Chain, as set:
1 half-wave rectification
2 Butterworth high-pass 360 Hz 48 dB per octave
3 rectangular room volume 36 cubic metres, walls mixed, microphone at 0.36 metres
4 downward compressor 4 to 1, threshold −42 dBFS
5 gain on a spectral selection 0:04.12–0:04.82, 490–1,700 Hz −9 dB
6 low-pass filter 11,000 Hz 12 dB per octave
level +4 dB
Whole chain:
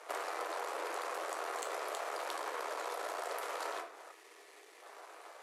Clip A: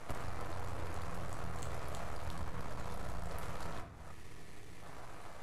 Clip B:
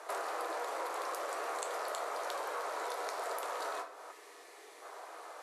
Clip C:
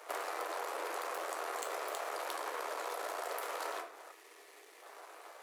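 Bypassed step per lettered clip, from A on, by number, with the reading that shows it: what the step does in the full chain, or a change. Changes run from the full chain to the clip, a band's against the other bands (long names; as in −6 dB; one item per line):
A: 2, 250 Hz band +13.5 dB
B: 1, 1 kHz band +1.5 dB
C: 6, change in crest factor +1.5 dB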